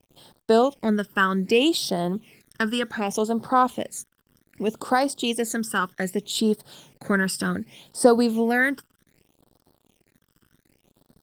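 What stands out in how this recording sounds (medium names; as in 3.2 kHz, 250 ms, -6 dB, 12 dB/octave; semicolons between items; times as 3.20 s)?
a quantiser's noise floor 10-bit, dither none; phasing stages 12, 0.65 Hz, lowest notch 710–2400 Hz; Opus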